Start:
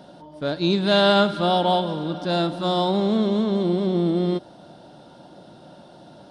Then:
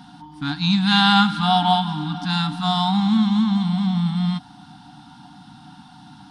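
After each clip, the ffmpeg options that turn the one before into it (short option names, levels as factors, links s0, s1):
-af "afftfilt=real='re*(1-between(b*sr/4096,310,720))':imag='im*(1-between(b*sr/4096,310,720))':win_size=4096:overlap=0.75,volume=1.68"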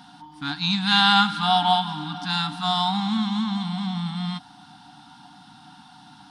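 -af "lowshelf=f=360:g=-9.5"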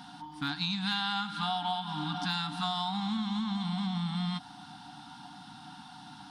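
-af "acompressor=threshold=0.0355:ratio=10,aeval=exprs='0.0944*(cos(1*acos(clip(val(0)/0.0944,-1,1)))-cos(1*PI/2))+0.00168*(cos(2*acos(clip(val(0)/0.0944,-1,1)))-cos(2*PI/2))+0.00119*(cos(3*acos(clip(val(0)/0.0944,-1,1)))-cos(3*PI/2))':c=same"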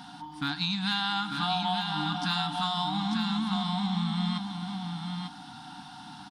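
-af "aecho=1:1:895:0.531,volume=1.33"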